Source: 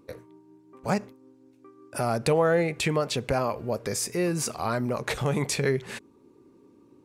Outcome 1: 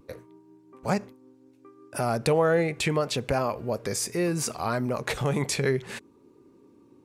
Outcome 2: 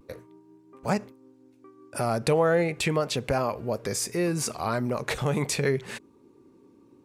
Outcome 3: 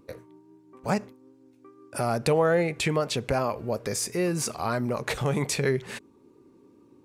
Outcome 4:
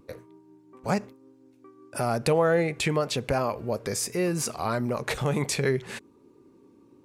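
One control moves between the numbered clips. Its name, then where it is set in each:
vibrato, rate: 0.67, 0.41, 2.4, 1 Hz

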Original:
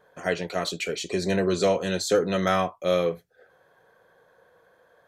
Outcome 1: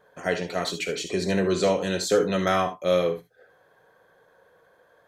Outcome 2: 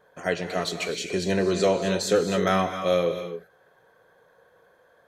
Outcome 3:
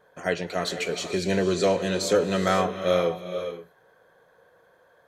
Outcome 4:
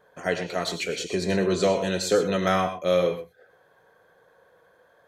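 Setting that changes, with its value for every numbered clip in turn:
non-linear reverb, gate: 90, 290, 540, 140 ms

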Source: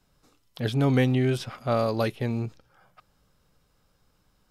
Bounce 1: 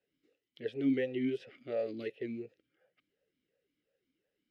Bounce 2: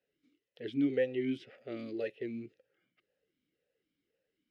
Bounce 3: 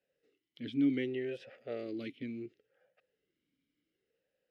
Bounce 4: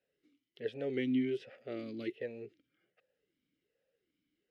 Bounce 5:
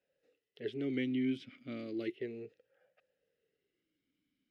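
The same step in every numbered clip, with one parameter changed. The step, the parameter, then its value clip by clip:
vowel sweep, rate: 2.8, 1.9, 0.69, 1.3, 0.34 Hz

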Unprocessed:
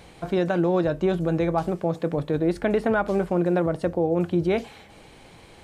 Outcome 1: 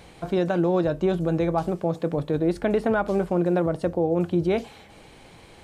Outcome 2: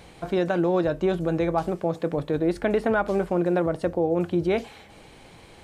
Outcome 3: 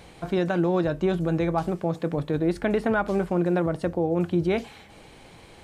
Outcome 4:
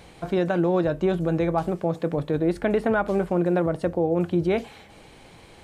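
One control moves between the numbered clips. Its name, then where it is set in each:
dynamic EQ, frequency: 1900, 160, 540, 5300 Hz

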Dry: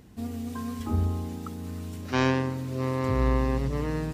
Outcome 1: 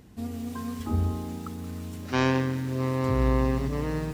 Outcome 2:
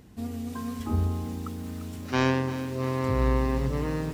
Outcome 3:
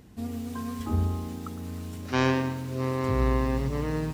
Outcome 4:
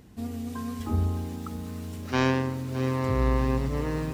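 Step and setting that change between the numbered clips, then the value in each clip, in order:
lo-fi delay, time: 0.176, 0.347, 0.11, 0.612 s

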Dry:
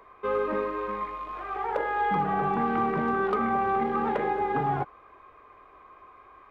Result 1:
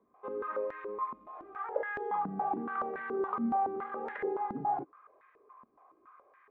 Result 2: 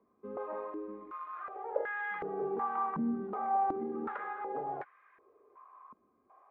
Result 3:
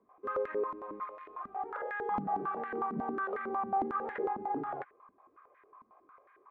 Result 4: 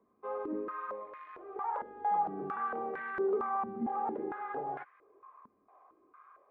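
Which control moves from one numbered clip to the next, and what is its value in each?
stepped band-pass, rate: 7.1, 2.7, 11, 4.4 Hz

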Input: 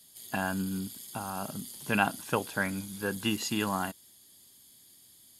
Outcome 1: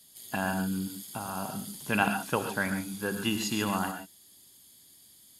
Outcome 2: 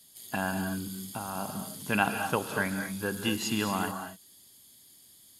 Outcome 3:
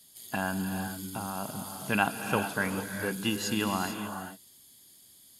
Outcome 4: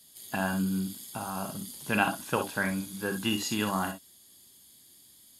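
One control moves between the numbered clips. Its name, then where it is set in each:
non-linear reverb, gate: 160, 260, 470, 80 ms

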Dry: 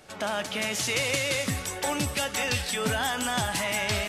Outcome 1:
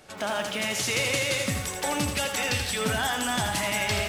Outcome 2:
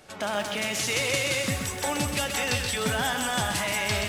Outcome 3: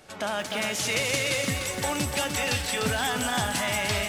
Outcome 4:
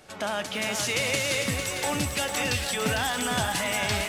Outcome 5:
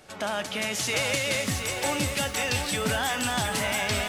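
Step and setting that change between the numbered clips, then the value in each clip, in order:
lo-fi delay, time: 82, 128, 299, 452, 720 ms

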